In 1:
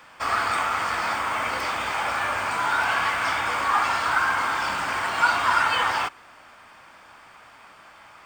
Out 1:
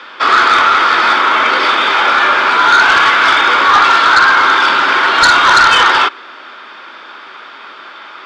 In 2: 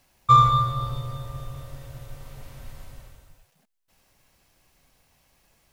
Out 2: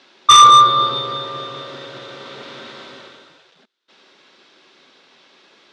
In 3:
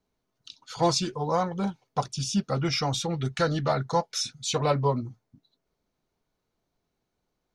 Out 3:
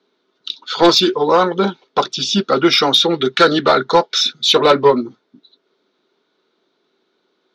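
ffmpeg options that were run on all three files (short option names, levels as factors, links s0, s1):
-af "highpass=f=230:w=0.5412,highpass=f=230:w=1.3066,equalizer=f=380:t=q:w=4:g=8,equalizer=f=730:t=q:w=4:g=-5,equalizer=f=1400:t=q:w=4:g=6,equalizer=f=3600:t=q:w=4:g=10,lowpass=f=5100:w=0.5412,lowpass=f=5100:w=1.3066,aeval=exprs='0.708*sin(PI/2*3.16*val(0)/0.708)':c=same"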